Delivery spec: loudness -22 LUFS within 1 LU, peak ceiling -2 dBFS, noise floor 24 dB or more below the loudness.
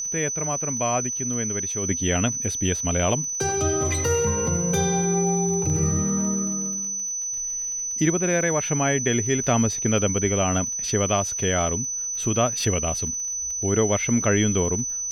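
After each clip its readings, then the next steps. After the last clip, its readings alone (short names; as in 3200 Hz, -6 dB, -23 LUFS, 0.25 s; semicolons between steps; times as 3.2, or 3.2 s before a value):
ticks 34/s; steady tone 6000 Hz; tone level -26 dBFS; loudness -22.5 LUFS; peak -8.5 dBFS; loudness target -22.0 LUFS
-> de-click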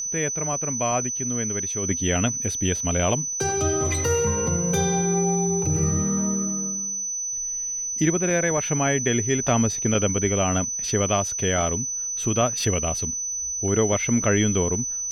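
ticks 0.53/s; steady tone 6000 Hz; tone level -26 dBFS
-> notch 6000 Hz, Q 30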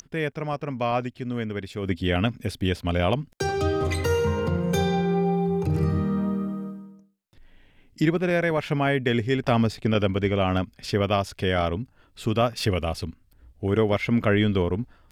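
steady tone none; loudness -25.0 LUFS; peak -10.0 dBFS; loudness target -22.0 LUFS
-> gain +3 dB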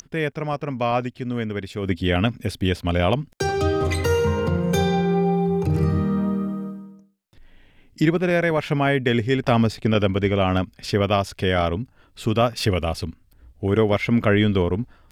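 loudness -22.0 LUFS; peak -7.0 dBFS; noise floor -56 dBFS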